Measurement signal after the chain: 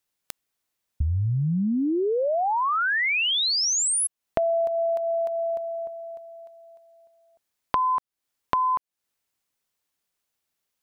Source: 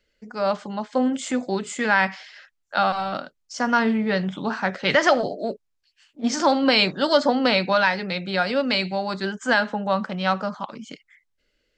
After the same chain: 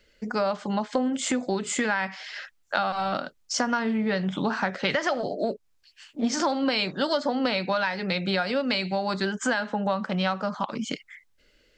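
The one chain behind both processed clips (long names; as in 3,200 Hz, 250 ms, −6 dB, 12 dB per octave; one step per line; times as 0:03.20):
downward compressor 6 to 1, threshold −32 dBFS
level +8.5 dB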